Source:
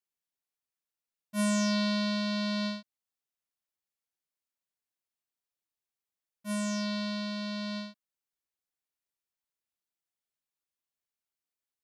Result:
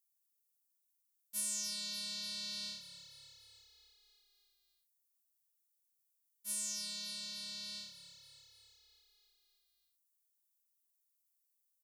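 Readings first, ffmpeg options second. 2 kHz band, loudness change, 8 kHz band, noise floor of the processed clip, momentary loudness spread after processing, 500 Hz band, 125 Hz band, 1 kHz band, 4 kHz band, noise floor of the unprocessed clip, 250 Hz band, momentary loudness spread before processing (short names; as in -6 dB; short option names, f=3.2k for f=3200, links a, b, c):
-15.0 dB, -8.0 dB, +3.0 dB, -81 dBFS, 20 LU, -26.0 dB, n/a, -23.0 dB, -3.5 dB, under -85 dBFS, -28.0 dB, 12 LU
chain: -filter_complex "[0:a]equalizer=f=1.1k:w=0.35:g=-13.5,acompressor=threshold=-35dB:ratio=6,aderivative,asplit=8[a][b][c][d][e][f][g][h];[b]adelay=293,afreqshift=-35,volume=-13dB[i];[c]adelay=586,afreqshift=-70,volume=-17dB[j];[d]adelay=879,afreqshift=-105,volume=-21dB[k];[e]adelay=1172,afreqshift=-140,volume=-25dB[l];[f]adelay=1465,afreqshift=-175,volume=-29.1dB[m];[g]adelay=1758,afreqshift=-210,volume=-33.1dB[n];[h]adelay=2051,afreqshift=-245,volume=-37.1dB[o];[a][i][j][k][l][m][n][o]amix=inputs=8:normalize=0,volume=8.5dB"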